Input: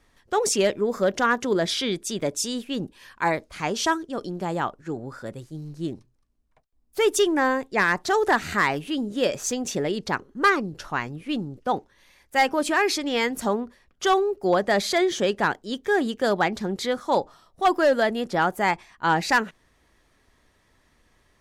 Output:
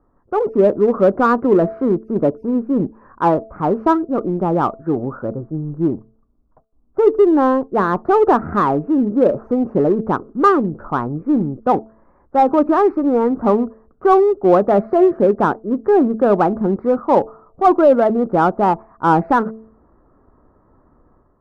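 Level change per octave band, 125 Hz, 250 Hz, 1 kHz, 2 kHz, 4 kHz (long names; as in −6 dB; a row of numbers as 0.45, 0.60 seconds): +9.5 dB, +11.0 dB, +7.5 dB, −5.0 dB, below −10 dB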